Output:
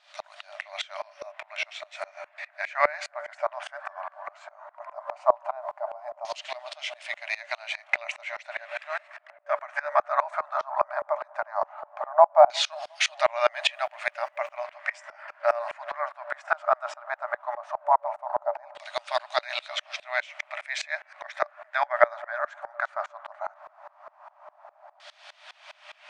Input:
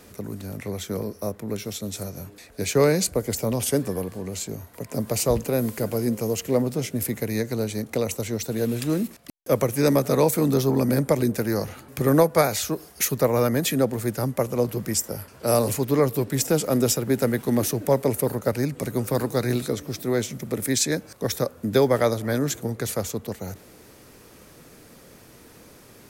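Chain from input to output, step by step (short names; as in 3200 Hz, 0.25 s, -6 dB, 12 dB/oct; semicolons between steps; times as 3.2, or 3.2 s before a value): FFT band-pass 580–9900 Hz; in parallel at +1 dB: compressor, threshold -34 dBFS, peak gain reduction 17.5 dB; on the sum: LFO low-pass saw down 0.16 Hz 810–3700 Hz; 13.75–14.62 crackle 590/s -57 dBFS; on a send: dark delay 0.358 s, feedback 59%, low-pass 1000 Hz, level -18 dB; on the sum: dB-ramp tremolo swelling 4.9 Hz, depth 25 dB; gain +4.5 dB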